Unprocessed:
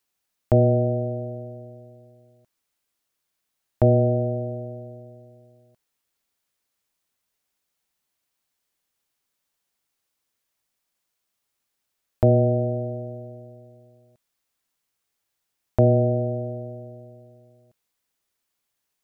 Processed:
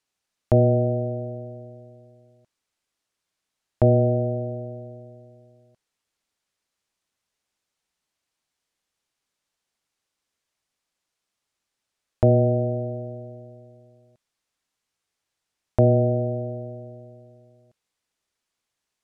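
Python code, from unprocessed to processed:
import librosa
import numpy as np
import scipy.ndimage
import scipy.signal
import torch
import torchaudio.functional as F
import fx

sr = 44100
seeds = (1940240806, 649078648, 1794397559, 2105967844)

y = scipy.signal.sosfilt(scipy.signal.butter(2, 8500.0, 'lowpass', fs=sr, output='sos'), x)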